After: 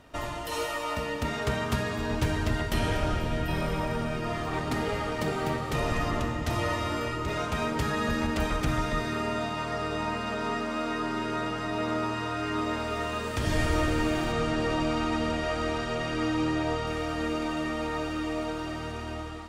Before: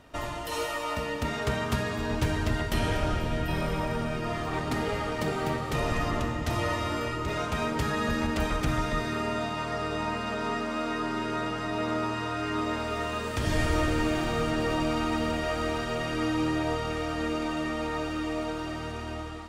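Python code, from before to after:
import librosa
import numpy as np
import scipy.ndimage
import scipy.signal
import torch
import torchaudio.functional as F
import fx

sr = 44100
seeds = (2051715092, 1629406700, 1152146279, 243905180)

y = fx.lowpass(x, sr, hz=8900.0, slope=12, at=(14.32, 16.87))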